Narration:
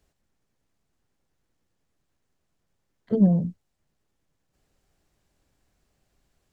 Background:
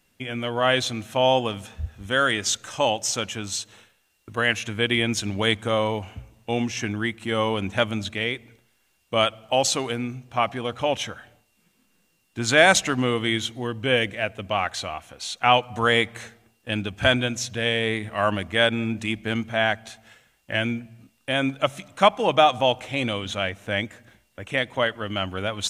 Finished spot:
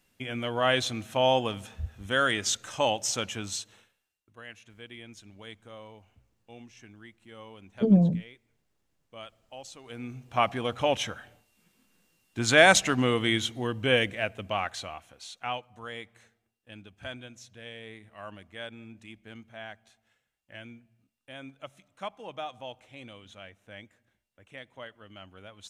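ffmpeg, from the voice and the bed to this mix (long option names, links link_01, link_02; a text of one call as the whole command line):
ffmpeg -i stem1.wav -i stem2.wav -filter_complex "[0:a]adelay=4700,volume=-1dB[link_01];[1:a]volume=17.5dB,afade=type=out:start_time=3.42:duration=0.8:silence=0.105925,afade=type=in:start_time=9.83:duration=0.57:silence=0.0841395,afade=type=out:start_time=13.84:duration=1.86:silence=0.11885[link_02];[link_01][link_02]amix=inputs=2:normalize=0" out.wav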